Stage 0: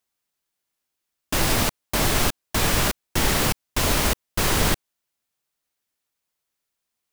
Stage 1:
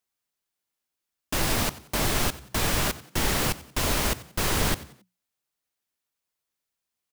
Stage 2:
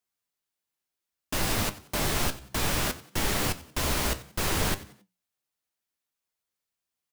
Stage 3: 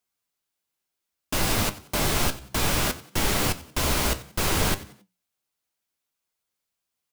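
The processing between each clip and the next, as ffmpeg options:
-filter_complex "[0:a]asplit=4[a][b][c][d];[b]adelay=91,afreqshift=60,volume=-18dB[e];[c]adelay=182,afreqshift=120,volume=-26.6dB[f];[d]adelay=273,afreqshift=180,volume=-35.3dB[g];[a][e][f][g]amix=inputs=4:normalize=0,volume=-4dB"
-af "flanger=delay=9.7:depth=5.7:regen=67:speed=0.61:shape=sinusoidal,volume=2dB"
-af "bandreject=f=1.8k:w=20,volume=3.5dB"

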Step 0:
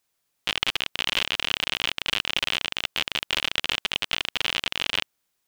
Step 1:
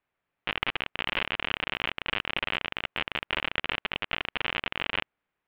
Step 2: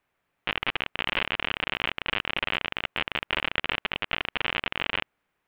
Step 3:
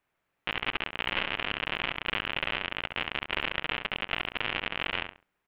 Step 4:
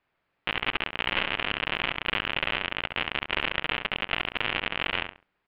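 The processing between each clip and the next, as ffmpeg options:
-af "lowpass=f=2.5k:w=0.5412,lowpass=f=2.5k:w=1.3066"
-af "alimiter=limit=-17.5dB:level=0:latency=1:release=34,volume=6.5dB"
-filter_complex "[0:a]asplit=2[a][b];[b]adelay=68,lowpass=f=2.4k:p=1,volume=-6dB,asplit=2[c][d];[d]adelay=68,lowpass=f=2.4k:p=1,volume=0.27,asplit=2[e][f];[f]adelay=68,lowpass=f=2.4k:p=1,volume=0.27[g];[a][c][e][g]amix=inputs=4:normalize=0,volume=-3dB"
-af "aresample=11025,aresample=44100,volume=3dB"

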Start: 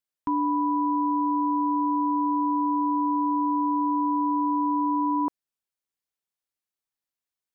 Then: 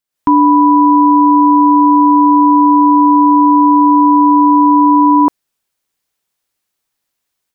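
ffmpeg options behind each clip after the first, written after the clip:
-af "dynaudnorm=f=100:g=3:m=10.5dB,volume=6dB"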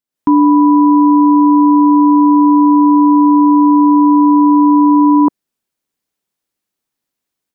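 -af "equalizer=f=250:t=o:w=1.8:g=8.5,volume=-6dB"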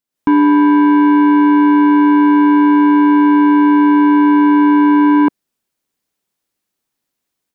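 -af "asoftclip=type=tanh:threshold=-8.5dB,volume=2.5dB"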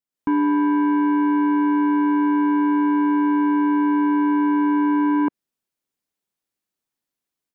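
-filter_complex "[0:a]acrossover=split=3000[a][b];[b]acompressor=threshold=-57dB:ratio=4:attack=1:release=60[c];[a][c]amix=inputs=2:normalize=0,volume=-9dB"

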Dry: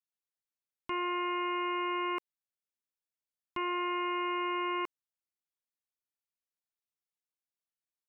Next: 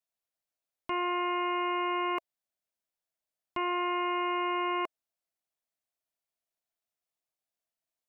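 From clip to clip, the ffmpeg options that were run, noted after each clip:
-af "equalizer=f=660:w=3.6:g=11,volume=1.5dB"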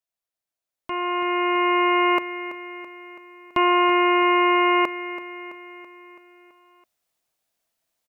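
-af "aecho=1:1:331|662|993|1324|1655|1986:0.224|0.125|0.0702|0.0393|0.022|0.0123,dynaudnorm=f=250:g=11:m=12.5dB"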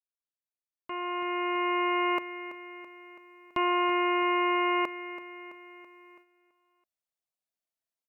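-af "agate=range=-9dB:threshold=-49dB:ratio=16:detection=peak,volume=-8dB"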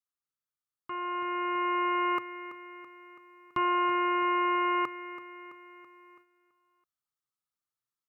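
-af "equalizer=f=125:t=o:w=0.33:g=12,equalizer=f=630:t=o:w=0.33:g=-12,equalizer=f=1.25k:t=o:w=0.33:g=12,equalizer=f=2.5k:t=o:w=0.33:g=-5,volume=-2.5dB"

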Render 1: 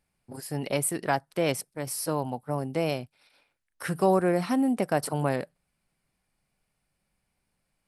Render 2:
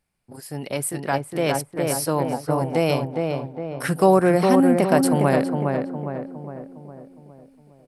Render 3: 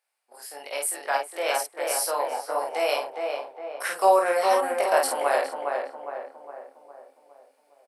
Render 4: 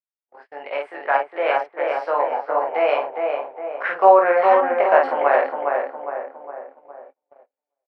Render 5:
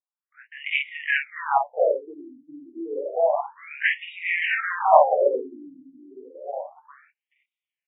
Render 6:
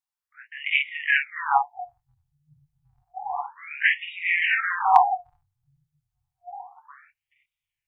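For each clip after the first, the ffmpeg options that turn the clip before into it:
-filter_complex "[0:a]asplit=2[a][b];[b]adelay=410,lowpass=f=1.6k:p=1,volume=-3.5dB,asplit=2[c][d];[d]adelay=410,lowpass=f=1.6k:p=1,volume=0.52,asplit=2[e][f];[f]adelay=410,lowpass=f=1.6k:p=1,volume=0.52,asplit=2[g][h];[h]adelay=410,lowpass=f=1.6k:p=1,volume=0.52,asplit=2[i][j];[j]adelay=410,lowpass=f=1.6k:p=1,volume=0.52,asplit=2[k][l];[l]adelay=410,lowpass=f=1.6k:p=1,volume=0.52,asplit=2[m][n];[n]adelay=410,lowpass=f=1.6k:p=1,volume=0.52[o];[a][c][e][g][i][k][m][o]amix=inputs=8:normalize=0,dynaudnorm=f=350:g=9:m=8dB"
-af "highpass=f=570:w=0.5412,highpass=f=570:w=1.3066,aecho=1:1:21|51:0.668|0.668,volume=-2.5dB"
-af "lowpass=f=2.3k:w=0.5412,lowpass=f=2.3k:w=1.3066,agate=range=-32dB:threshold=-50dB:ratio=16:detection=peak,volume=6.5dB"
-af "aexciter=amount=2.6:drive=6.3:freq=2.2k,afftfilt=real='re*between(b*sr/1024,230*pow(2700/230,0.5+0.5*sin(2*PI*0.3*pts/sr))/1.41,230*pow(2700/230,0.5+0.5*sin(2*PI*0.3*pts/sr))*1.41)':imag='im*between(b*sr/1024,230*pow(2700/230,0.5+0.5*sin(2*PI*0.3*pts/sr))/1.41,230*pow(2700/230,0.5+0.5*sin(2*PI*0.3*pts/sr))*1.41)':win_size=1024:overlap=0.75,volume=3.5dB"
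-af "asubboost=boost=10.5:cutoff=180,afftfilt=real='re*(1-between(b*sr/4096,160,710))':imag='im*(1-between(b*sr/4096,160,710))':win_size=4096:overlap=0.75,volume=2.5dB"

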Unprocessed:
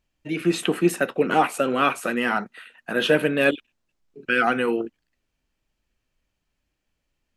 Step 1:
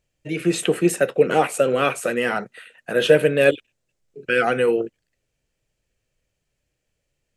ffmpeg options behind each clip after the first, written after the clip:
-af "equalizer=f=125:t=o:w=1:g=9,equalizer=f=250:t=o:w=1:g=-5,equalizer=f=500:t=o:w=1:g=10,equalizer=f=1k:t=o:w=1:g=-5,equalizer=f=2k:t=o:w=1:g=3,equalizer=f=8k:t=o:w=1:g=8,volume=-1.5dB"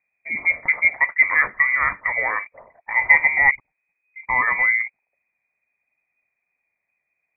-af "lowpass=f=2.1k:t=q:w=0.5098,lowpass=f=2.1k:t=q:w=0.6013,lowpass=f=2.1k:t=q:w=0.9,lowpass=f=2.1k:t=q:w=2.563,afreqshift=-2500"

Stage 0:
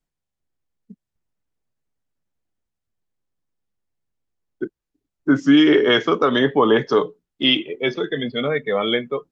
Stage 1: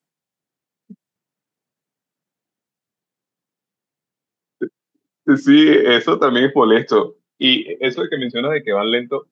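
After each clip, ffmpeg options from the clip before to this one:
-af "highpass=f=140:w=0.5412,highpass=f=140:w=1.3066,volume=3dB"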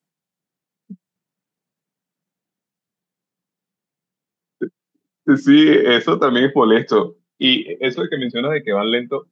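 -af "equalizer=f=180:w=3.1:g=7.5,volume=-1dB"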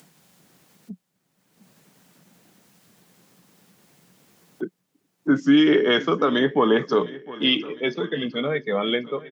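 -af "acompressor=mode=upward:threshold=-25dB:ratio=2.5,aecho=1:1:707|1414|2121|2828|3535:0.112|0.064|0.0365|0.0208|0.0118,volume=-5.5dB"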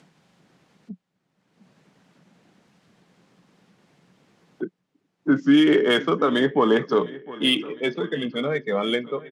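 -af "adynamicsmooth=sensitivity=2:basefreq=4.6k"

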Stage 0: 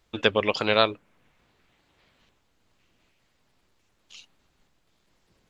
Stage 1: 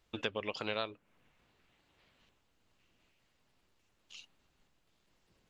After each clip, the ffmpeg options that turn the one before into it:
-af "acompressor=threshold=-31dB:ratio=2.5,equalizer=f=2.8k:w=7:g=3.5,volume=-6dB"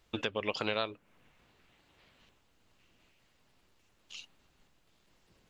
-af "alimiter=limit=-21.5dB:level=0:latency=1:release=245,volume=5dB"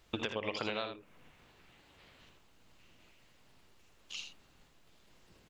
-af "acompressor=threshold=-37dB:ratio=4,aecho=1:1:58|80:0.211|0.398,volume=3.5dB"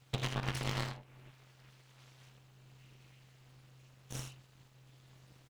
-filter_complex "[0:a]asplit=2[a][b];[b]adelay=41,volume=-12.5dB[c];[a][c]amix=inputs=2:normalize=0,aeval=exprs='abs(val(0))':c=same,aeval=exprs='val(0)*sin(2*PI*130*n/s)':c=same,volume=4dB"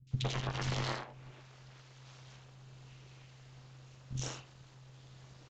-filter_complex "[0:a]acrossover=split=250|2400[a][b][c];[c]adelay=70[d];[b]adelay=110[e];[a][e][d]amix=inputs=3:normalize=0,alimiter=level_in=4.5dB:limit=-24dB:level=0:latency=1:release=386,volume=-4.5dB,aresample=16000,aresample=44100,volume=6dB"

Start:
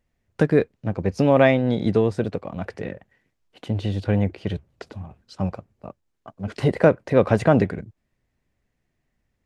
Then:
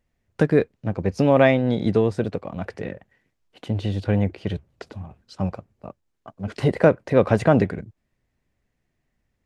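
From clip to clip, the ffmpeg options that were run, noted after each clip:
-af anull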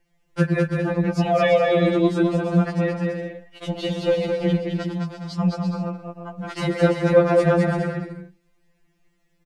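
-filter_complex "[0:a]alimiter=limit=-13dB:level=0:latency=1:release=351,asplit=2[a][b];[b]aecho=0:1:210|336|411.6|457|484.2:0.631|0.398|0.251|0.158|0.1[c];[a][c]amix=inputs=2:normalize=0,afftfilt=real='re*2.83*eq(mod(b,8),0)':imag='im*2.83*eq(mod(b,8),0)':win_size=2048:overlap=0.75,volume=8.5dB"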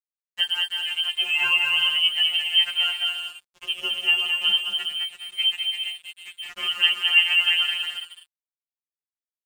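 -af "dynaudnorm=f=200:g=21:m=5dB,lowpass=f=2.8k:t=q:w=0.5098,lowpass=f=2.8k:t=q:w=0.6013,lowpass=f=2.8k:t=q:w=0.9,lowpass=f=2.8k:t=q:w=2.563,afreqshift=-3300,aeval=exprs='sgn(val(0))*max(abs(val(0))-0.0141,0)':c=same,volume=-4dB"

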